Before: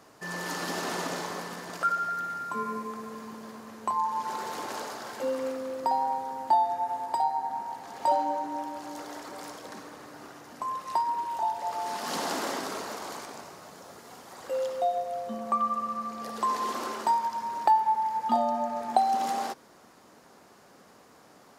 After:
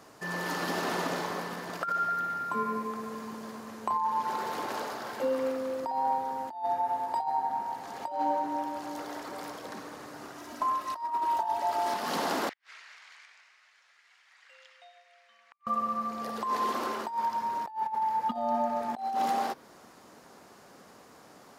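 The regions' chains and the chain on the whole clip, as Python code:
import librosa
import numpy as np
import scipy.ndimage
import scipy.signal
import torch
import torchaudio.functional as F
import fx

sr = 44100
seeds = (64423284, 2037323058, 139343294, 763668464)

y = fx.chain(x, sr, fx.high_shelf(hz=4300.0, db=4.5),
    fx.comb(ms=3.1, depth=0.71),
    fx.doppler_dist(depth_ms=0.11), at=(10.38, 11.94))
y = fx.chain(y, sr, fx.ladder_bandpass(hz=2600.0, resonance_pct=45),
    fx.peak_eq(hz=1700.0, db=3.5, octaves=0.75),
    fx.gate_flip(shuts_db=-38.0, range_db=-41), at=(12.49, 15.67))
y = fx.dynamic_eq(y, sr, hz=7500.0, q=0.88, threshold_db=-55.0, ratio=4.0, max_db=-7)
y = fx.over_compress(y, sr, threshold_db=-28.0, ratio=-0.5)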